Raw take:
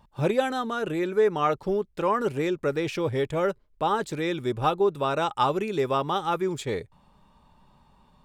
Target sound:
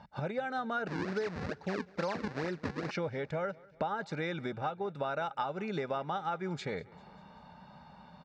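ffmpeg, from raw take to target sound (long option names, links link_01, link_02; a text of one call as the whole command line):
ffmpeg -i in.wav -filter_complex "[0:a]aecho=1:1:1.4:0.53,acompressor=threshold=-38dB:ratio=10,asettb=1/sr,asplit=3[link_01][link_02][link_03];[link_01]atrim=end=0.874[link_04];[link_02]atrim=start=0.87:end=2.91,asetpts=PTS-STARTPTS,afade=type=in:duration=0.004:curve=qsin,afade=type=out:start_time=2.036:duration=0.004:curve=qsin,acrusher=samples=40:mix=1:aa=0.000001:lfo=1:lforange=64:lforate=2.3[link_05];[link_03]atrim=start=2.906[link_06];[link_04][link_05]acrossfade=duration=0.004:curve1=hsin:curve2=qsin[link_07];[link_07][link_06]acrossfade=duration=0.004:curve1=qsin:curve2=hsin,highpass=120,equalizer=frequency=120:width_type=q:width=4:gain=-7,equalizer=frequency=180:width_type=q:width=4:gain=3,equalizer=frequency=1700:width_type=q:width=4:gain=6,equalizer=frequency=3200:width_type=q:width=4:gain=-9,lowpass=frequency=5100:width=0.5412,lowpass=frequency=5100:width=1.3066,aecho=1:1:197|394|591|788:0.0668|0.0381|0.0217|0.0124,volume=6dB" out.wav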